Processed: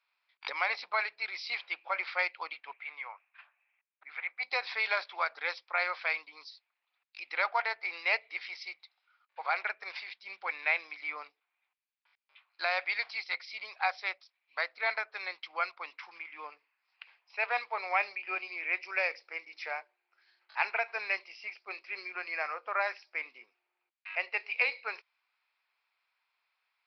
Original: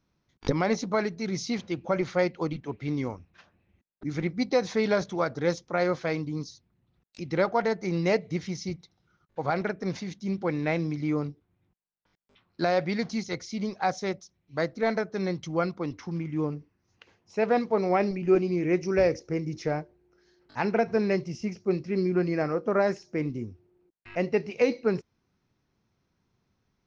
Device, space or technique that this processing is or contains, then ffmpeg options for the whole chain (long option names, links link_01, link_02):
musical greeting card: -filter_complex "[0:a]aresample=11025,aresample=44100,highpass=frequency=850:width=0.5412,highpass=frequency=850:width=1.3066,equalizer=frequency=2400:width_type=o:width=0.38:gain=10,asettb=1/sr,asplit=3[link_01][link_02][link_03];[link_01]atrim=end=2.734[link_04];[link_02]atrim=start=2.73:end=4.43,asetpts=PTS-STARTPTS,afade=type=in:duration=0.004:curve=qsin,afade=type=out:start_time=1.696:duration=0.004:curve=qsin,acrossover=split=520 3000:gain=0.141 1 0.0708[link_05][link_06][link_07];[link_05][link_06][link_07]amix=inputs=3:normalize=0[link_08];[link_03]atrim=start=4.426[link_09];[link_04][link_08]acrossfade=duration=0.004:curve1=hsin:curve2=qsin[link_10];[link_10][link_09]acrossfade=duration=0.004:curve1=qsin:curve2=hsin"